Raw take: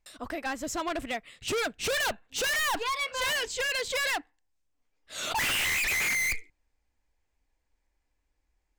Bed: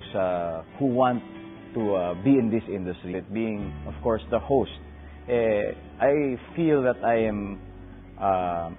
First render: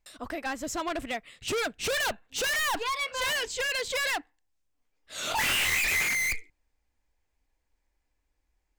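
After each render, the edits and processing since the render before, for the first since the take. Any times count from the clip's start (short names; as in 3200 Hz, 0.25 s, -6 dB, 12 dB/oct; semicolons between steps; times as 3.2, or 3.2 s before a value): 5.23–6.03 doubler 24 ms -4 dB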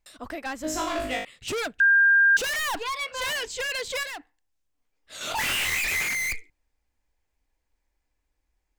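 0.62–1.25 flutter echo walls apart 3.3 m, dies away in 0.59 s; 1.8–2.37 bleep 1600 Hz -14.5 dBFS; 4.03–5.21 compressor 10:1, threshold -35 dBFS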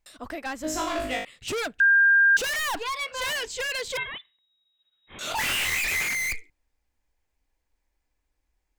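3.97–5.19 inverted band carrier 3800 Hz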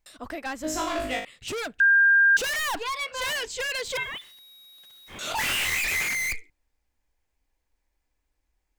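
1.19–1.71 compressor, threshold -30 dBFS; 3.85–5.21 zero-crossing step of -46 dBFS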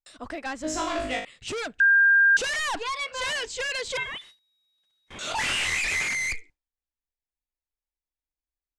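gate with hold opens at -43 dBFS; LPF 9100 Hz 24 dB/oct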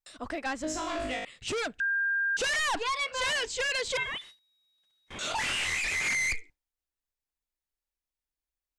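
limiter -25 dBFS, peak gain reduction 10.5 dB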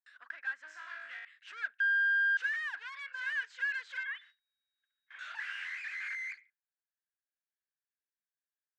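one-sided fold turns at -31 dBFS; ladder band-pass 1700 Hz, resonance 80%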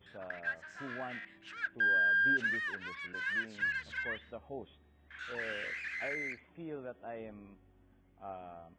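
add bed -22 dB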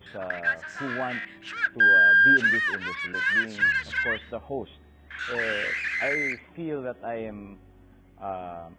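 gain +11.5 dB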